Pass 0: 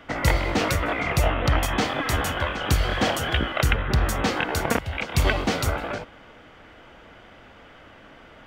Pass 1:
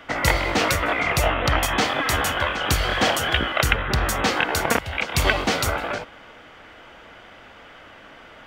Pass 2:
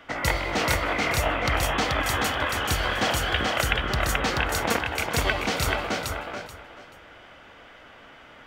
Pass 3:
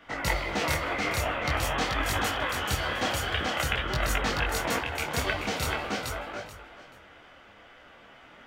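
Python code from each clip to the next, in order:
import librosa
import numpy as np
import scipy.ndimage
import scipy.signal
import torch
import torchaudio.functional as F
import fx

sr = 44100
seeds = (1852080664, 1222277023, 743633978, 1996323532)

y1 = fx.low_shelf(x, sr, hz=430.0, db=-7.5)
y1 = y1 * librosa.db_to_amplitude(5.0)
y2 = fx.echo_feedback(y1, sr, ms=432, feedback_pct=22, wet_db=-3)
y2 = y2 * librosa.db_to_amplitude(-5.0)
y3 = fx.detune_double(y2, sr, cents=16)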